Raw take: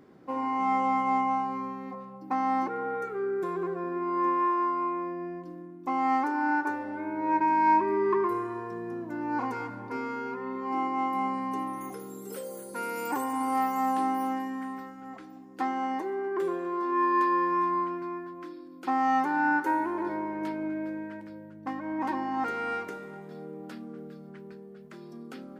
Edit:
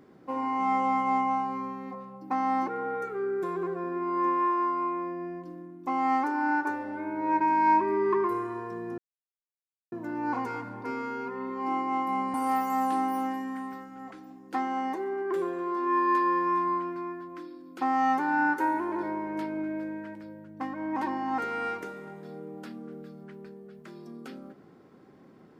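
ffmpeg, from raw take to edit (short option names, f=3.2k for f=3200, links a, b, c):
-filter_complex "[0:a]asplit=3[a][b][c];[a]atrim=end=8.98,asetpts=PTS-STARTPTS,afade=t=out:st=8.976:d=0.004:c=hsin,apad=pad_dur=0.94[d];[b]atrim=start=8.98:end=11.402,asetpts=PTS-STARTPTS,afade=t=in:d=0.004:c=hsin[e];[c]atrim=start=13.398[f];[d][e]concat=n=2:v=0:a=1[g];[g][f]acrossfade=d=0.004:c1=hsin:c2=hsin"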